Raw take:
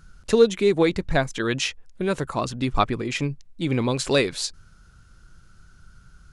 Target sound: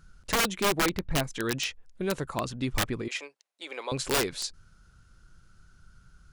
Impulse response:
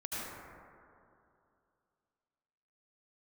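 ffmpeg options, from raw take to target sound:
-filter_complex "[0:a]asettb=1/sr,asplit=3[a][b][c];[a]atrim=end=0.644[d];[b]atrim=start=0.64:end=1.24,asetpts=PTS-STARTPTS,afade=t=in:d=0.004:c=qsin,afade=t=out:st=0.596:d=0.004:c=qsin,equalizer=f=7.2k:w=0.71:g=-12[e];[c]atrim=start=1.236[f];[d][e]acrossfade=d=0.004:c1=hsin:c2=qsin[g];[g][f]acrossfade=d=0.004:c1=qsin:c2=hsin,asettb=1/sr,asplit=3[h][i][j];[h]atrim=end=3.084[k];[i]atrim=start=3.08:end=3.92,asetpts=PTS-STARTPTS,afade=t=in:d=0.004:c=qsin,afade=t=out:st=0.836:d=0.004:c=qsin,highpass=f=520:w=0.5412,highpass=f=520:w=1.3066[l];[j]atrim=start=3.916[m];[k][l]acrossfade=d=0.004:c1=hsin:c2=qsin[n];[n][m]acrossfade=d=0.004:c1=qsin:c2=hsin,aeval=exprs='(mod(4.73*val(0)+1,2)-1)/4.73':c=same,volume=-5.5dB"

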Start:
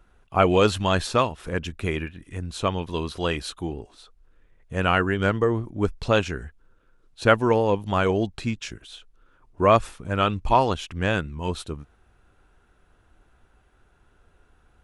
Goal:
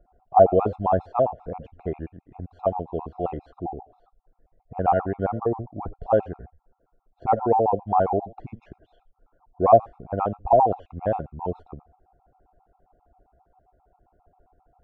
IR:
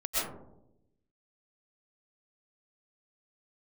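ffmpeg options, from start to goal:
-filter_complex "[0:a]lowpass=f=750:t=q:w=6.8[a];[1:a]atrim=start_sample=2205,atrim=end_sample=3969[b];[a][b]afir=irnorm=-1:irlink=0,afftfilt=real='re*gt(sin(2*PI*7.5*pts/sr)*(1-2*mod(floor(b*sr/1024/690),2)),0)':imag='im*gt(sin(2*PI*7.5*pts/sr)*(1-2*mod(floor(b*sr/1024/690),2)),0)':win_size=1024:overlap=0.75"

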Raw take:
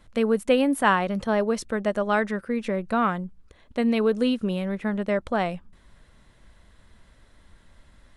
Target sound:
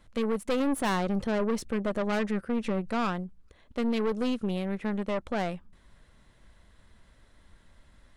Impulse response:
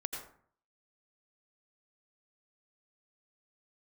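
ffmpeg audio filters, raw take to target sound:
-filter_complex "[0:a]asettb=1/sr,asplit=3[a][b][c];[a]atrim=end=0.604[d];[b]atrim=start=0.6:end=2.9,asetpts=PTS-STARTPTS,afade=t=in:d=0.004:c=qsin,afade=t=out:st=2.296:d=0.004:c=qsin,lowshelf=f=450:g=5.5[e];[c]atrim=start=2.896[f];[d][e]acrossfade=d=0.004:c1=hsin:c2=qsin[g];[g][f]acrossfade=d=0.004:c1=qsin:c2=hsin,aeval=exprs='(tanh(14.1*val(0)+0.55)-tanh(0.55))/14.1':c=same,volume=-1dB"

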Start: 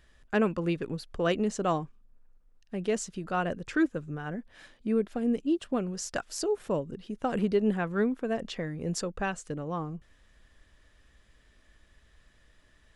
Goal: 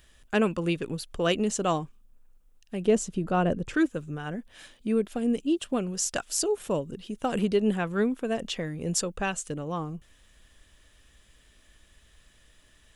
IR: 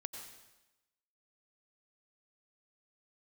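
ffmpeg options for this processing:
-filter_complex "[0:a]asettb=1/sr,asplit=3[a][b][c];[a]atrim=end=2.854[d];[b]atrim=start=2.85:end=3.74,asetpts=PTS-STARTPTS,afade=t=in:d=0.004:c=qsin,afade=t=out:st=0.886:d=0.004:c=qsin,tiltshelf=f=1.1k:g=7[e];[c]atrim=start=3.736[f];[d][e]acrossfade=d=0.004:c1=hsin:c2=qsin[g];[g][f]acrossfade=d=0.004:c1=qsin:c2=hsin,aexciter=amount=1.8:drive=5.8:freq=2.6k,volume=1.5dB"

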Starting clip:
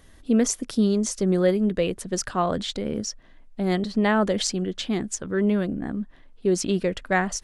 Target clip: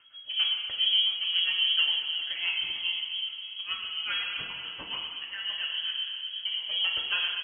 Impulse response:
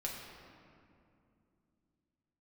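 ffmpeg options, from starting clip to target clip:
-filter_complex "[0:a]asettb=1/sr,asplit=3[a][b][c];[a]atrim=end=3.624[d];[b]atrim=start=3.62:end=5.67,asetpts=PTS-STARTPTS,afade=t=in:d=0.004:c=qsin,afade=t=out:st=2.046:d=0.004:c=qsin,highpass=440[e];[c]atrim=start=5.666[f];[d][e]acrossfade=d=0.004:c1=hsin:c2=qsin[g];[g][f]acrossfade=d=0.004:c1=qsin:c2=hsin,asoftclip=type=tanh:threshold=-21.5dB,tremolo=f=7.3:d=0.9,aecho=1:1:513|1026|1539|2052:0.112|0.0595|0.0315|0.0167[h];[1:a]atrim=start_sample=2205[i];[h][i]afir=irnorm=-1:irlink=0,lowpass=f=2.8k:t=q:w=0.5098,lowpass=f=2.8k:t=q:w=0.6013,lowpass=f=2.8k:t=q:w=0.9,lowpass=f=2.8k:t=q:w=2.563,afreqshift=-3300"

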